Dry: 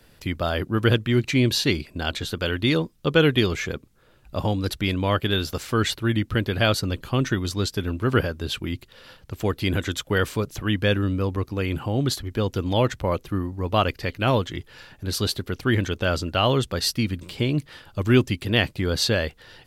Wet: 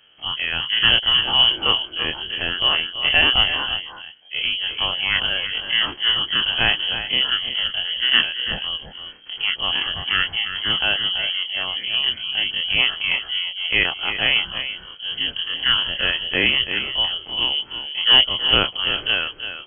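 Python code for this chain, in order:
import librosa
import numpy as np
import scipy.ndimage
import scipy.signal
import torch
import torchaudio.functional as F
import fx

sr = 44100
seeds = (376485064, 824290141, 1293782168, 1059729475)

p1 = fx.spec_dilate(x, sr, span_ms=60)
p2 = p1 + fx.echo_single(p1, sr, ms=333, db=-8.0, dry=0)
p3 = fx.cheby_harmonics(p2, sr, harmonics=(7,), levels_db=(-26,), full_scale_db=-2.0)
p4 = fx.peak_eq(p3, sr, hz=240.0, db=7.5, octaves=0.31)
p5 = fx.freq_invert(p4, sr, carrier_hz=3200)
y = F.gain(torch.from_numpy(p5), -1.0).numpy()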